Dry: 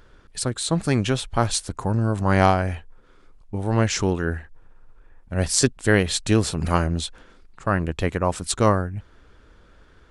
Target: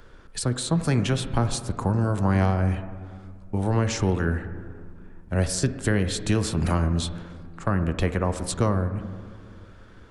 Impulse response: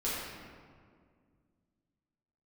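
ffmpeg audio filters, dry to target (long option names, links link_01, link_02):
-filter_complex "[0:a]acrossover=split=220|460[link_01][link_02][link_03];[link_01]acompressor=threshold=-23dB:ratio=4[link_04];[link_02]acompressor=threshold=-37dB:ratio=4[link_05];[link_03]acompressor=threshold=-31dB:ratio=4[link_06];[link_04][link_05][link_06]amix=inputs=3:normalize=0,asplit=2[link_07][link_08];[1:a]atrim=start_sample=2205,lowpass=2100,lowshelf=frequency=82:gain=-10.5[link_09];[link_08][link_09]afir=irnorm=-1:irlink=0,volume=-13dB[link_10];[link_07][link_10]amix=inputs=2:normalize=0,volume=2dB"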